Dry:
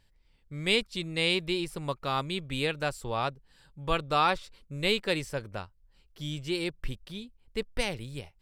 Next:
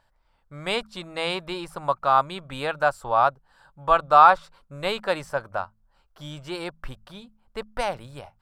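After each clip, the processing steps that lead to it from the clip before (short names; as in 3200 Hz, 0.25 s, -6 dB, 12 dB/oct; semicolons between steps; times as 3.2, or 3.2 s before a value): band shelf 950 Hz +15 dB; de-hum 53.79 Hz, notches 4; gain -2.5 dB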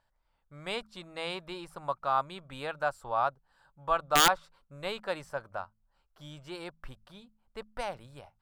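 wrapped overs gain 4.5 dB; gain -9 dB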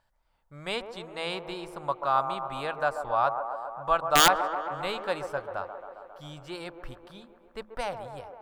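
band-limited delay 0.135 s, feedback 74%, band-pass 630 Hz, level -7.5 dB; gain +3 dB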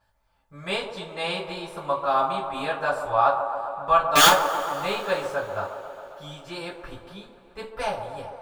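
reverb, pre-delay 3 ms, DRR -9.5 dB; gain -5 dB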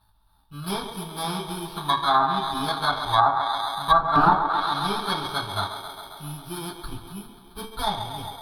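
FFT order left unsorted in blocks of 16 samples; fixed phaser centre 2000 Hz, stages 6; treble ducked by the level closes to 990 Hz, closed at -18 dBFS; gain +8 dB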